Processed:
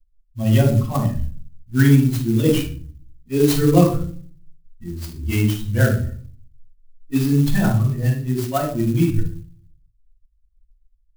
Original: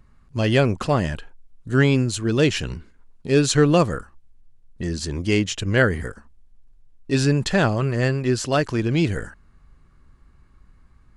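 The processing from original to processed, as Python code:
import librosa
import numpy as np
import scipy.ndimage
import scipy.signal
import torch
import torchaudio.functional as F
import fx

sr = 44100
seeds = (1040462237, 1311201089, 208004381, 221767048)

y = fx.bin_expand(x, sr, power=2.0)
y = fx.filter_lfo_notch(y, sr, shape='sine', hz=5.4, low_hz=500.0, high_hz=2500.0, q=0.96)
y = fx.room_shoebox(y, sr, seeds[0], volume_m3=380.0, walls='furnished', distance_m=8.2)
y = fx.clock_jitter(y, sr, seeds[1], jitter_ms=0.041)
y = y * librosa.db_to_amplitude(-8.0)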